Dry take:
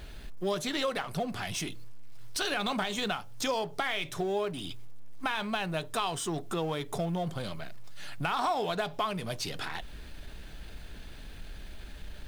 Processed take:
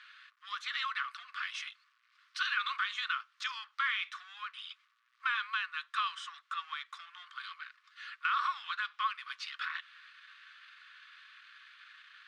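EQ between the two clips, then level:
Chebyshev high-pass with heavy ripple 1,100 Hz, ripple 3 dB
low-pass filter 2,300 Hz 12 dB per octave
notch filter 1,600 Hz, Q 25
+5.5 dB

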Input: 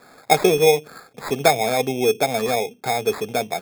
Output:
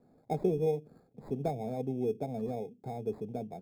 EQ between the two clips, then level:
drawn EQ curve 210 Hz 0 dB, 800 Hz −14 dB, 1,300 Hz −28 dB
−6.0 dB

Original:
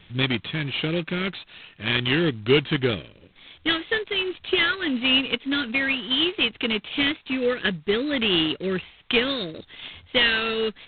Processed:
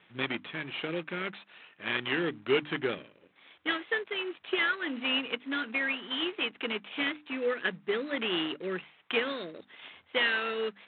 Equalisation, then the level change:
band-pass filter 190–2,000 Hz
low-shelf EQ 440 Hz −8.5 dB
mains-hum notches 50/100/150/200/250/300 Hz
−2.5 dB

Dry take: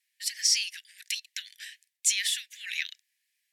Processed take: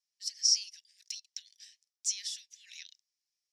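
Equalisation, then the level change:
resonant band-pass 5,500 Hz, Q 5
0.0 dB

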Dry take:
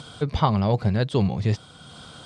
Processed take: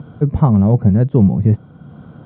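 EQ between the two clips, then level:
Gaussian smoothing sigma 3.7 samples
high-frequency loss of the air 270 metres
parametric band 180 Hz +14.5 dB 2.9 octaves
−2.0 dB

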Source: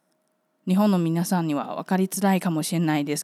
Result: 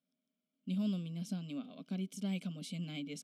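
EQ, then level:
dynamic equaliser 7,400 Hz, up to +5 dB, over −47 dBFS, Q 1.9
formant filter i
phaser with its sweep stopped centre 770 Hz, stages 4
+5.0 dB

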